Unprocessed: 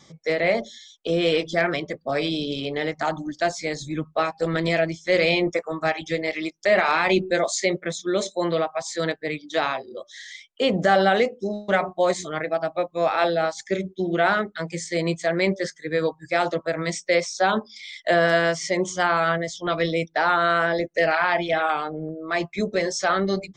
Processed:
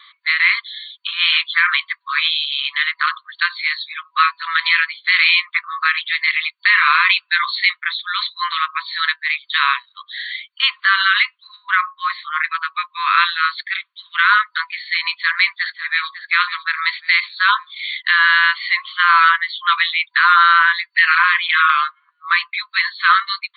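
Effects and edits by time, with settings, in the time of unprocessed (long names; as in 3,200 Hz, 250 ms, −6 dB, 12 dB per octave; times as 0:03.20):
0:11.56–0:12.39: spectral tilt −4.5 dB per octave
0:15.17–0:16.21: delay throw 550 ms, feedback 35%, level −13.5 dB
whole clip: brick-wall band-pass 980–4,500 Hz; boost into a limiter +15.5 dB; level −2 dB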